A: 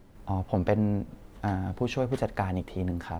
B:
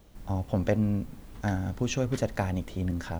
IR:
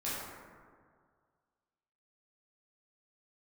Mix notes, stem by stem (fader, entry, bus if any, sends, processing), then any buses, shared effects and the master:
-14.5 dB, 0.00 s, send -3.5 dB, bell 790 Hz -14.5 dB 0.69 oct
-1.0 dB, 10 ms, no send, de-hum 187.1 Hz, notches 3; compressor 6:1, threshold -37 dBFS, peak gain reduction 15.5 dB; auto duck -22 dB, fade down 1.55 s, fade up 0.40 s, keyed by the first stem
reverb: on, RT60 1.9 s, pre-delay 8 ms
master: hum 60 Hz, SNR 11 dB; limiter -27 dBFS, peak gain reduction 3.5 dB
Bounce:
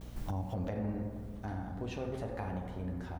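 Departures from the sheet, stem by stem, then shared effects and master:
stem A: missing bell 790 Hz -14.5 dB 0.69 oct; stem B -1.0 dB -> +7.5 dB

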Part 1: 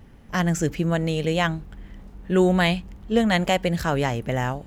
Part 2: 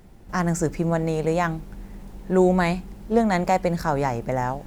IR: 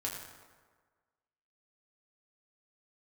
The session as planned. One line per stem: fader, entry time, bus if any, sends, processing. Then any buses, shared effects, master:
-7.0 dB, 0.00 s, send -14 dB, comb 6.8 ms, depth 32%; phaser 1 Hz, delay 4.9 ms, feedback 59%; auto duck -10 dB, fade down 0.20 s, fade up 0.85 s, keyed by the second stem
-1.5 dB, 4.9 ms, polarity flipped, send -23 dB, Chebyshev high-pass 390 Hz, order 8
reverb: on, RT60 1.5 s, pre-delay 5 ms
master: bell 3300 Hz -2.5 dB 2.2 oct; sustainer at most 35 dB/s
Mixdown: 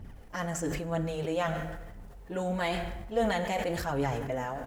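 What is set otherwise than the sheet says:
stem 1: missing comb 6.8 ms, depth 32%; stem 2 -1.5 dB -> -10.5 dB

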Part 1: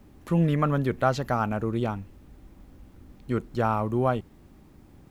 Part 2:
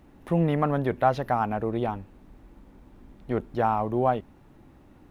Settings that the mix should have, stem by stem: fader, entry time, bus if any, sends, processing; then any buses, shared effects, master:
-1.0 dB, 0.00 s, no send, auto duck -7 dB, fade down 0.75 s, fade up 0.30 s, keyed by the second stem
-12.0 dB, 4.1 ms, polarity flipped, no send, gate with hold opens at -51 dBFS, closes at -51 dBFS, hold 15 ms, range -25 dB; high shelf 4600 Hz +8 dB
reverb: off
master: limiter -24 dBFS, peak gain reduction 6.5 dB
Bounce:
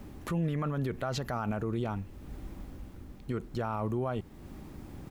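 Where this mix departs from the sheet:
stem 1 -1.0 dB -> +7.0 dB; stem 2 -12.0 dB -> -19.5 dB

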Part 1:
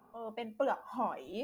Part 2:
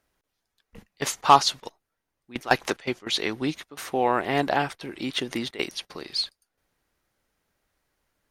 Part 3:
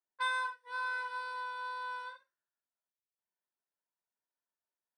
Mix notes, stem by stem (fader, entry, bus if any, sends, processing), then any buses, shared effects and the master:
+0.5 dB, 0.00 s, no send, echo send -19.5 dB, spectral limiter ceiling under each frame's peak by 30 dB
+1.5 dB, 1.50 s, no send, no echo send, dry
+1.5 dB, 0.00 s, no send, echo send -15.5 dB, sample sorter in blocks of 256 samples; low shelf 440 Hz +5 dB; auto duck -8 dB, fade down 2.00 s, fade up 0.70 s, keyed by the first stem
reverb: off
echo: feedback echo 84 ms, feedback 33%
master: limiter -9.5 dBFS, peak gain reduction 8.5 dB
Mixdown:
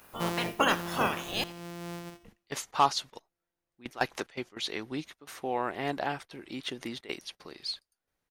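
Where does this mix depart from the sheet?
stem 1 +0.5 dB -> +7.0 dB; stem 2 +1.5 dB -> -8.5 dB; stem 3: missing low shelf 440 Hz +5 dB

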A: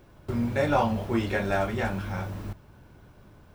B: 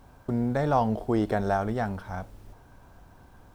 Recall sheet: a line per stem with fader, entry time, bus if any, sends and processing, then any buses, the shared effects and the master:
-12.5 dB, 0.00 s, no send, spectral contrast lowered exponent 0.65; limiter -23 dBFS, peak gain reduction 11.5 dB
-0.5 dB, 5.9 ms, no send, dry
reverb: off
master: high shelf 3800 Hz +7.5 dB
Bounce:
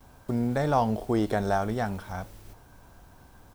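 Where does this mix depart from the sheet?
stem A -12.5 dB -> -22.0 dB; stem B: polarity flipped

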